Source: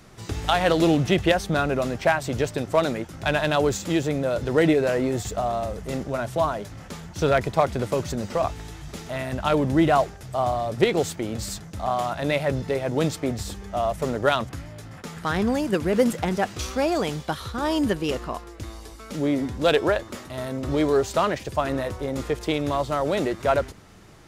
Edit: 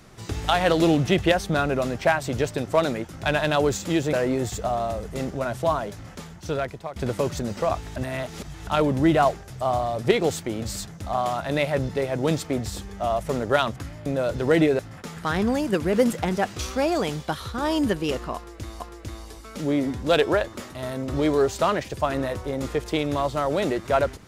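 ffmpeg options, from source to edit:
ffmpeg -i in.wav -filter_complex "[0:a]asplit=8[link_01][link_02][link_03][link_04][link_05][link_06][link_07][link_08];[link_01]atrim=end=4.132[link_09];[link_02]atrim=start=4.858:end=7.69,asetpts=PTS-STARTPTS,afade=type=out:start_time=1.882:duration=0.95:silence=0.11885[link_10];[link_03]atrim=start=7.69:end=8.692,asetpts=PTS-STARTPTS,afade=type=in:duration=0.004:curve=hsin:silence=0.11885[link_11];[link_04]atrim=start=8.688:end=9.402,asetpts=PTS-STARTPTS,areverse[link_12];[link_05]atrim=start=9.398:end=14.792[link_13];[link_06]atrim=start=4.128:end=4.862[link_14];[link_07]atrim=start=14.788:end=18.802[link_15];[link_08]atrim=start=18.348[link_16];[link_10][link_11]concat=n=2:v=0:a=1[link_17];[link_09][link_17]acrossfade=duration=0.004:curve1=hsin:curve2=hsin[link_18];[link_18][link_12]acrossfade=duration=0.004:curve1=hsin:curve2=hsin[link_19];[link_19][link_13]acrossfade=duration=0.004:curve1=hsin:curve2=hsin[link_20];[link_20][link_14]acrossfade=duration=0.004:curve1=hsin:curve2=hsin[link_21];[link_21][link_15]acrossfade=duration=0.004:curve1=hsin:curve2=hsin[link_22];[link_22][link_16]acrossfade=duration=0.004:curve1=hsin:curve2=hsin" out.wav

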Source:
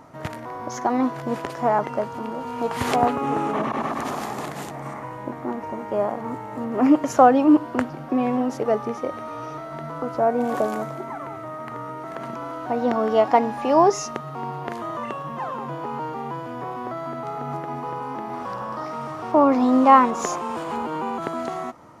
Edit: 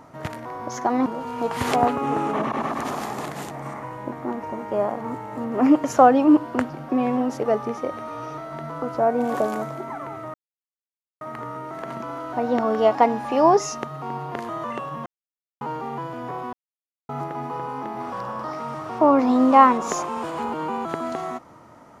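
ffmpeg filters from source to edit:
ffmpeg -i in.wav -filter_complex "[0:a]asplit=7[link_01][link_02][link_03][link_04][link_05][link_06][link_07];[link_01]atrim=end=1.062[link_08];[link_02]atrim=start=2.258:end=11.54,asetpts=PTS-STARTPTS,afade=type=out:start_time=9.278:duration=0.004:curve=hsin,apad=pad_dur=0.87[link_09];[link_03]atrim=start=11.54:end=15.39,asetpts=PTS-STARTPTS,afade=type=in:duration=0.004:curve=hsin,afade=type=out:start_time=3.846:duration=0.004:curve=hsin[link_10];[link_04]atrim=start=15.39:end=15.94,asetpts=PTS-STARTPTS,volume=0[link_11];[link_05]atrim=start=15.94:end=16.86,asetpts=PTS-STARTPTS,afade=type=in:duration=0.004:curve=hsin,afade=type=out:start_time=0.916:duration=0.004:curve=hsin[link_12];[link_06]atrim=start=16.86:end=17.42,asetpts=PTS-STARTPTS,volume=0[link_13];[link_07]atrim=start=17.42,asetpts=PTS-STARTPTS,afade=type=in:duration=0.004:curve=hsin[link_14];[link_09][link_10][link_11][link_12][link_13][link_14]concat=n=6:v=0:a=1[link_15];[link_08][link_15]acrossfade=duration=0.004:curve1=hsin:curve2=hsin" out.wav

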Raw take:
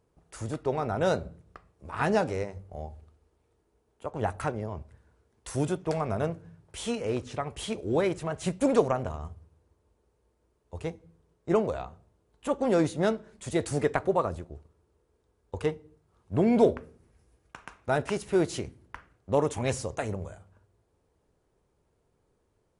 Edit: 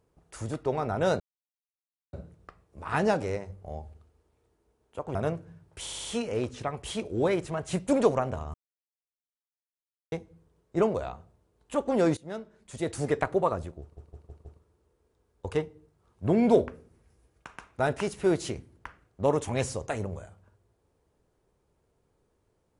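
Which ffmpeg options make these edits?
ffmpeg -i in.wav -filter_complex "[0:a]asplit=14[link_01][link_02][link_03][link_04][link_05][link_06][link_07][link_08][link_09][link_10][link_11][link_12][link_13][link_14];[link_01]atrim=end=1.2,asetpts=PTS-STARTPTS,afade=type=out:start_time=1.196:duration=0.004:curve=hsin,apad=pad_dur=0.93[link_15];[link_02]atrim=start=1.2:end=4.222,asetpts=PTS-STARTPTS,afade=type=in:duration=0.004:curve=hsin[link_16];[link_03]atrim=start=6.118:end=6.842[link_17];[link_04]atrim=start=6.778:end=6.842[link_18];[link_05]atrim=start=6.778:end=6.842[link_19];[link_06]atrim=start=6.778:end=6.842[link_20];[link_07]atrim=start=6.778:end=9.27,asetpts=PTS-STARTPTS,afade=type=out:start_time=2.488:duration=0.004:curve=hsin[link_21];[link_08]atrim=start=9.27:end=10.85,asetpts=PTS-STARTPTS,volume=0[link_22];[link_09]atrim=start=10.85:end=12.9,asetpts=PTS-STARTPTS,afade=type=in:duration=0.004:curve=hsin,afade=type=out:start_time=2.046:duration=0.004:curve=hsin:silence=0.125893[link_23];[link_10]atrim=start=12.9:end=14.702,asetpts=PTS-STARTPTS,afade=type=in:duration=1.08:silence=0.125893[link_24];[link_11]atrim=start=14.538:end=14.702[link_25];[link_12]atrim=start=14.538:end=14.702[link_26];[link_13]atrim=start=14.538:end=14.702[link_27];[link_14]atrim=start=14.538[link_28];[link_15][link_16]concat=n=2:v=0:a=1[link_29];[link_29][link_17]acrossfade=duration=0.004:curve1=hsin:curve2=hsin[link_30];[link_30][link_18]acrossfade=duration=0.004:curve1=hsin:curve2=hsin[link_31];[link_31][link_19]acrossfade=duration=0.004:curve1=hsin:curve2=hsin[link_32];[link_32][link_20]acrossfade=duration=0.004:curve1=hsin:curve2=hsin[link_33];[link_21][link_22][link_23][link_24]concat=n=4:v=0:a=1[link_34];[link_33][link_34]acrossfade=duration=0.004:curve1=hsin:curve2=hsin[link_35];[link_35][link_25]acrossfade=duration=0.004:curve1=hsin:curve2=hsin[link_36];[link_36][link_26]acrossfade=duration=0.004:curve1=hsin:curve2=hsin[link_37];[link_37][link_27]acrossfade=duration=0.004:curve1=hsin:curve2=hsin[link_38];[link_38][link_28]acrossfade=duration=0.004:curve1=hsin:curve2=hsin" out.wav

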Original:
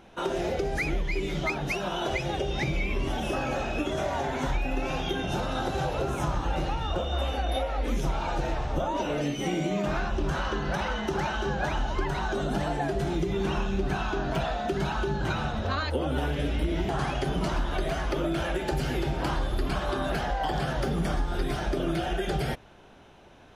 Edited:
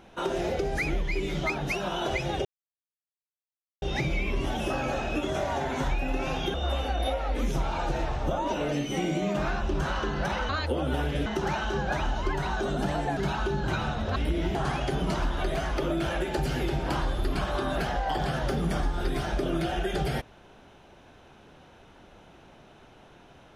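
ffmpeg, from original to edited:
ffmpeg -i in.wav -filter_complex "[0:a]asplit=7[link_01][link_02][link_03][link_04][link_05][link_06][link_07];[link_01]atrim=end=2.45,asetpts=PTS-STARTPTS,afade=type=out:start_time=2.446:duration=0.004:curve=hsin,apad=pad_dur=1.37[link_08];[link_02]atrim=start=2.45:end=5.172,asetpts=PTS-STARTPTS,afade=type=in:duration=0.004:curve=hsin[link_09];[link_03]atrim=start=7.028:end=10.982[link_10];[link_04]atrim=start=15.728:end=16.502[link_11];[link_05]atrim=start=10.978:end=12.892[link_12];[link_06]atrim=start=14.738:end=15.732[link_13];[link_07]atrim=start=16.498[link_14];[link_08][link_09]concat=n=2:v=0:a=1[link_15];[link_15][link_10]acrossfade=duration=0.004:curve1=hsin:curve2=hsin[link_16];[link_16][link_11]acrossfade=duration=0.004:curve1=hsin:curve2=hsin[link_17];[link_17][link_12]acrossfade=duration=0.004:curve1=hsin:curve2=hsin[link_18];[link_18][link_13]acrossfade=duration=0.004:curve1=hsin:curve2=hsin[link_19];[link_19][link_14]acrossfade=duration=0.004:curve1=hsin:curve2=hsin" out.wav

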